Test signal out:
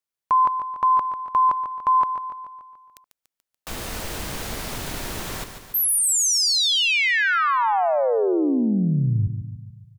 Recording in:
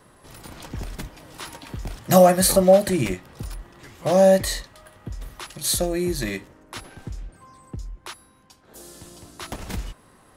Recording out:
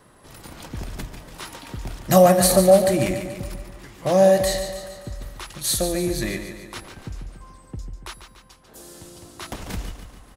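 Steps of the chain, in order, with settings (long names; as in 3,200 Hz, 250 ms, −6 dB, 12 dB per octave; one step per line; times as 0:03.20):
repeating echo 144 ms, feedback 56%, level −9 dB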